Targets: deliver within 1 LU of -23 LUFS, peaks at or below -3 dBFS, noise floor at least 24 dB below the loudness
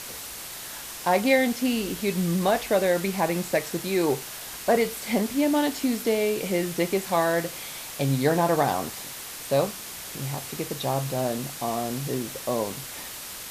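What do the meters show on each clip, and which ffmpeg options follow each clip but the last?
noise floor -38 dBFS; noise floor target -50 dBFS; loudness -26.0 LUFS; peak level -7.5 dBFS; loudness target -23.0 LUFS
-> -af "afftdn=nr=12:nf=-38"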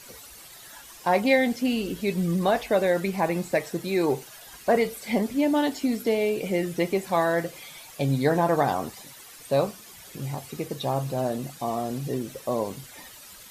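noise floor -47 dBFS; noise floor target -50 dBFS
-> -af "afftdn=nr=6:nf=-47"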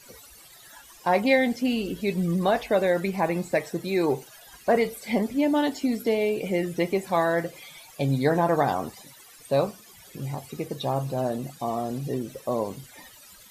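noise floor -50 dBFS; loudness -26.0 LUFS; peak level -7.5 dBFS; loudness target -23.0 LUFS
-> -af "volume=1.41"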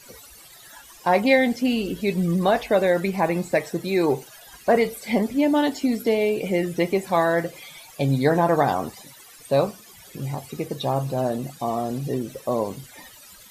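loudness -23.0 LUFS; peak level -4.5 dBFS; noise floor -47 dBFS

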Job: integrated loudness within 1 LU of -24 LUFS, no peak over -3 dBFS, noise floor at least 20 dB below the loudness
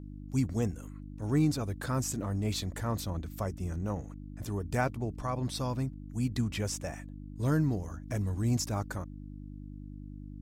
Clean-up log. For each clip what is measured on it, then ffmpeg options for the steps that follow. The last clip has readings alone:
hum 50 Hz; highest harmonic 300 Hz; hum level -41 dBFS; loudness -33.0 LUFS; peak level -15.5 dBFS; loudness target -24.0 LUFS
-> -af "bandreject=f=50:t=h:w=4,bandreject=f=100:t=h:w=4,bandreject=f=150:t=h:w=4,bandreject=f=200:t=h:w=4,bandreject=f=250:t=h:w=4,bandreject=f=300:t=h:w=4"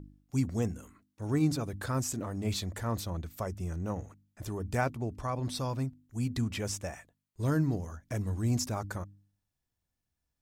hum not found; loudness -34.0 LUFS; peak level -16.0 dBFS; loudness target -24.0 LUFS
-> -af "volume=3.16"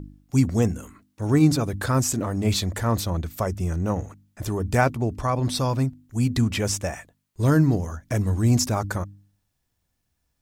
loudness -24.0 LUFS; peak level -6.0 dBFS; noise floor -75 dBFS

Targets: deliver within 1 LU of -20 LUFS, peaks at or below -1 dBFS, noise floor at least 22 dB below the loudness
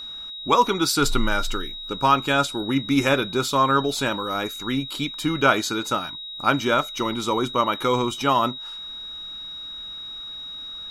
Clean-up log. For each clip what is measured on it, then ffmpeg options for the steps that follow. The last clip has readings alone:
steady tone 3.8 kHz; tone level -33 dBFS; loudness -23.5 LUFS; peak level -5.0 dBFS; loudness target -20.0 LUFS
-> -af "bandreject=f=3800:w=30"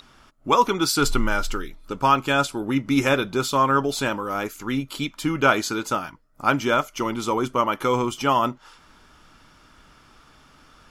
steady tone not found; loudness -22.5 LUFS; peak level -4.5 dBFS; loudness target -20.0 LUFS
-> -af "volume=1.33"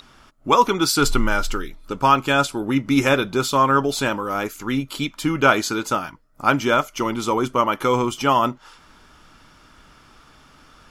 loudness -20.5 LUFS; peak level -2.0 dBFS; noise floor -52 dBFS

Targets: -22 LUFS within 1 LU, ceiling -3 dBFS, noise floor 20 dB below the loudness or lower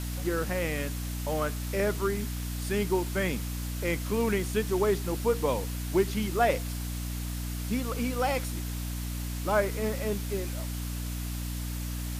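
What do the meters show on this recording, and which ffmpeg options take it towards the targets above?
hum 60 Hz; highest harmonic 300 Hz; hum level -32 dBFS; noise floor -34 dBFS; noise floor target -51 dBFS; loudness -30.5 LUFS; peak level -12.5 dBFS; loudness target -22.0 LUFS
-> -af "bandreject=f=60:t=h:w=4,bandreject=f=120:t=h:w=4,bandreject=f=180:t=h:w=4,bandreject=f=240:t=h:w=4,bandreject=f=300:t=h:w=4"
-af "afftdn=nr=17:nf=-34"
-af "volume=2.66"

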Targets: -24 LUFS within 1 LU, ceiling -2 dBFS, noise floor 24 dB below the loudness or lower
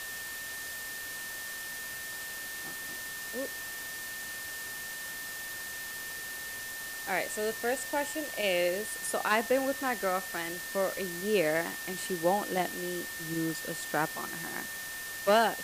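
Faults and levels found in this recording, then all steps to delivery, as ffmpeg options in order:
steady tone 1.8 kHz; tone level -40 dBFS; noise floor -40 dBFS; noise floor target -57 dBFS; loudness -33.0 LUFS; peak level -12.5 dBFS; loudness target -24.0 LUFS
-> -af "bandreject=f=1800:w=30"
-af "afftdn=nr=17:nf=-40"
-af "volume=2.82"

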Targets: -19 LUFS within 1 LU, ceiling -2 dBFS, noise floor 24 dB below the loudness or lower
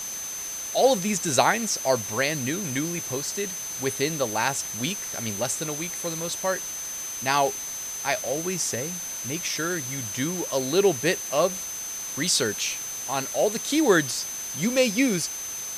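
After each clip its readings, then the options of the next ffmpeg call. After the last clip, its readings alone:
steady tone 6.2 kHz; tone level -32 dBFS; noise floor -34 dBFS; noise floor target -50 dBFS; loudness -25.5 LUFS; peak level -4.5 dBFS; loudness target -19.0 LUFS
-> -af "bandreject=f=6200:w=30"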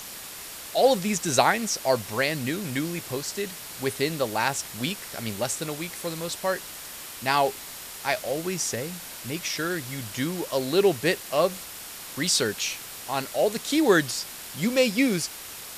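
steady tone not found; noise floor -40 dBFS; noise floor target -50 dBFS
-> -af "afftdn=nr=10:nf=-40"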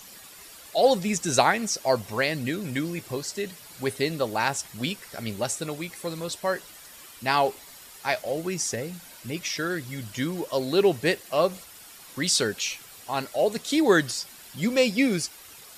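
noise floor -47 dBFS; noise floor target -51 dBFS
-> -af "afftdn=nr=6:nf=-47"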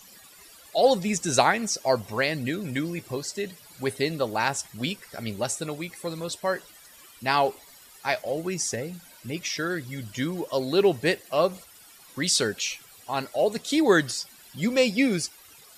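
noise floor -51 dBFS; loudness -26.5 LUFS; peak level -4.5 dBFS; loudness target -19.0 LUFS
-> -af "volume=2.37,alimiter=limit=0.794:level=0:latency=1"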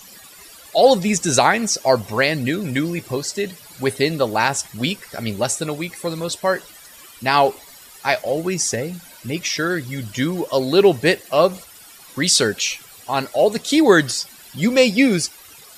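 loudness -19.0 LUFS; peak level -2.0 dBFS; noise floor -44 dBFS

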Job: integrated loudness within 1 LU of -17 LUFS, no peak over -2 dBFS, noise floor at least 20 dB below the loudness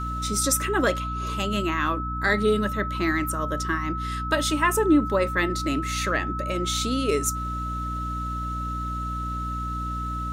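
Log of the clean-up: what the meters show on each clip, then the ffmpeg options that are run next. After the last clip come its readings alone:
hum 60 Hz; highest harmonic 300 Hz; hum level -29 dBFS; steady tone 1.3 kHz; tone level -30 dBFS; loudness -25.5 LUFS; peak level -9.0 dBFS; loudness target -17.0 LUFS
-> -af "bandreject=f=60:t=h:w=6,bandreject=f=120:t=h:w=6,bandreject=f=180:t=h:w=6,bandreject=f=240:t=h:w=6,bandreject=f=300:t=h:w=6"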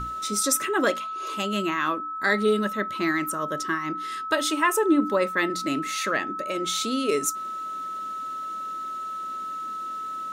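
hum not found; steady tone 1.3 kHz; tone level -30 dBFS
-> -af "bandreject=f=1300:w=30"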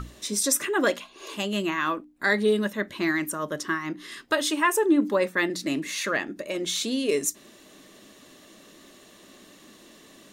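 steady tone not found; loudness -26.0 LUFS; peak level -10.0 dBFS; loudness target -17.0 LUFS
-> -af "volume=2.82,alimiter=limit=0.794:level=0:latency=1"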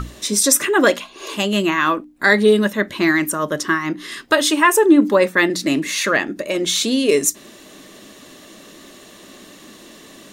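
loudness -17.0 LUFS; peak level -2.0 dBFS; noise floor -44 dBFS

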